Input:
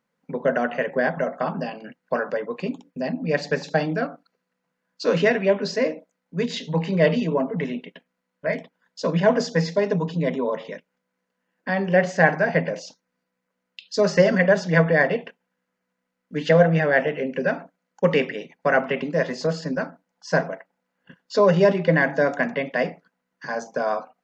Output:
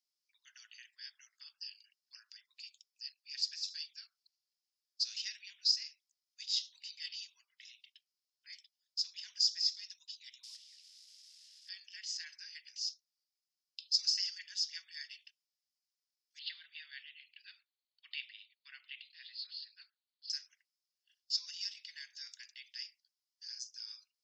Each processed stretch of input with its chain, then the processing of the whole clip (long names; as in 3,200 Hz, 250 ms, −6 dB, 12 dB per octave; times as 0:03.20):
0:10.43–0:11.69: linear delta modulator 64 kbit/s, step −33.5 dBFS + noise gate −29 dBFS, range −9 dB + low-pass filter 5,800 Hz
0:16.39–0:20.30: Butterworth low-pass 4,400 Hz 96 dB per octave + spectral tilt +1.5 dB per octave
whole clip: inverse Chebyshev high-pass filter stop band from 610 Hz, stop band 80 dB; parametric band 5,100 Hz +13 dB 0.32 octaves; level −5.5 dB